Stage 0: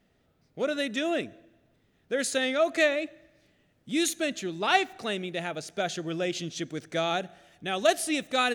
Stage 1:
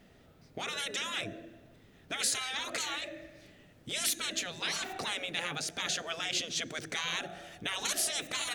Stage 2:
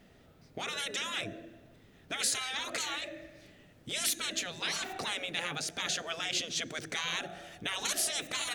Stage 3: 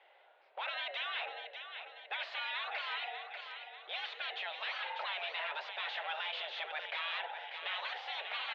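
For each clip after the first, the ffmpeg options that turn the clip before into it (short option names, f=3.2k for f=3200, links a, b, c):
-filter_complex "[0:a]afftfilt=real='re*lt(hypot(re,im),0.0562)':imag='im*lt(hypot(re,im),0.0562)':win_size=1024:overlap=0.75,asplit=2[a][b];[b]acompressor=threshold=-47dB:ratio=6,volume=-2dB[c];[a][c]amix=inputs=2:normalize=0,volume=3.5dB"
-af anull
-af "aecho=1:1:592|1184|1776|2368|2960|3552:0.299|0.152|0.0776|0.0396|0.0202|0.0103,asoftclip=type=hard:threshold=-33.5dB,highpass=f=440:t=q:w=0.5412,highpass=f=440:t=q:w=1.307,lowpass=f=3.3k:t=q:w=0.5176,lowpass=f=3.3k:t=q:w=0.7071,lowpass=f=3.3k:t=q:w=1.932,afreqshift=140,volume=1dB"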